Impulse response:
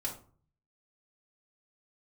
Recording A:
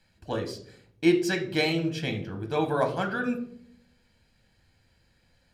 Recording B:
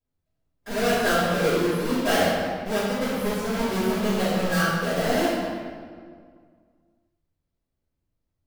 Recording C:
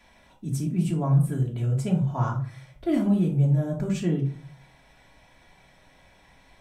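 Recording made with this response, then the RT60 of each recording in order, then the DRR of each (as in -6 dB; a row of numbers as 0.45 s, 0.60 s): C; 0.65 s, 2.0 s, 0.45 s; 4.0 dB, -15.0 dB, -4.0 dB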